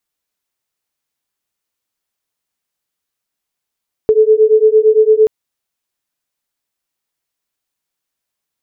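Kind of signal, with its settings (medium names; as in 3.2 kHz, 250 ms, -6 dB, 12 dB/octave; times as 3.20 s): beating tones 430 Hz, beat 8.8 Hz, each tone -9.5 dBFS 1.18 s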